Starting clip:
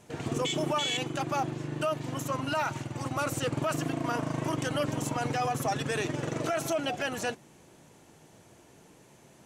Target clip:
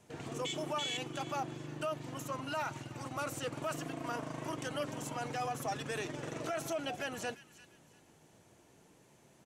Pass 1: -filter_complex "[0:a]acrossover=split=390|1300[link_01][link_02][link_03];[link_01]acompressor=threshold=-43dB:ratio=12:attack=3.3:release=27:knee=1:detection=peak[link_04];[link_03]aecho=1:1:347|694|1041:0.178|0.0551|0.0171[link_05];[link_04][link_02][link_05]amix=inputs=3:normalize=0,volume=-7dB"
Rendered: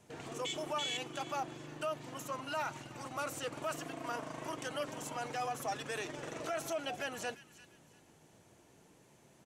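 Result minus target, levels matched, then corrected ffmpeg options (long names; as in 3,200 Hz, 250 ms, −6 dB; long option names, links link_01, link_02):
downward compressor: peak gain reduction +7.5 dB
-filter_complex "[0:a]acrossover=split=390|1300[link_01][link_02][link_03];[link_01]acompressor=threshold=-35dB:ratio=12:attack=3.3:release=27:knee=1:detection=peak[link_04];[link_03]aecho=1:1:347|694|1041:0.178|0.0551|0.0171[link_05];[link_04][link_02][link_05]amix=inputs=3:normalize=0,volume=-7dB"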